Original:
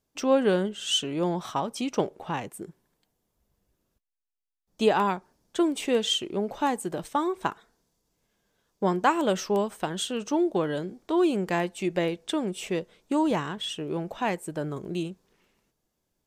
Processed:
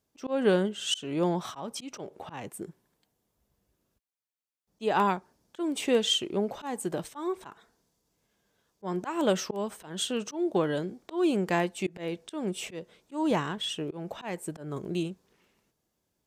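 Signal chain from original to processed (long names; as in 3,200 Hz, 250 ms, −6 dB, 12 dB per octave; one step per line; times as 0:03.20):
high-pass filter 47 Hz
volume swells 191 ms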